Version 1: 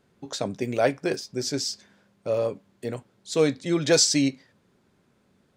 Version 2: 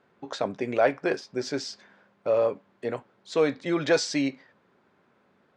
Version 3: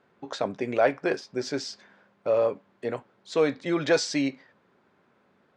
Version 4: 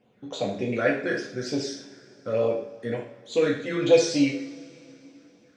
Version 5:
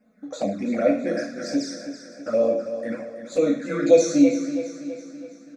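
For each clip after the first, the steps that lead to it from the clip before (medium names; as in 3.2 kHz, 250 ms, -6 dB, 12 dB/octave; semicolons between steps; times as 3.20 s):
in parallel at +2 dB: peak limiter -18.5 dBFS, peak gain reduction 11.5 dB; on the sum: low-pass 1.3 kHz 12 dB/octave; tilt EQ +4.5 dB/octave
no audible change
phase shifter stages 12, 3.4 Hz, lowest notch 790–1800 Hz; two-slope reverb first 0.54 s, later 3.4 s, from -22 dB, DRR -2.5 dB
static phaser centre 610 Hz, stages 8; touch-sensitive flanger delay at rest 4.8 ms, full sweep at -24.5 dBFS; feedback delay 328 ms, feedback 51%, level -11 dB; trim +7 dB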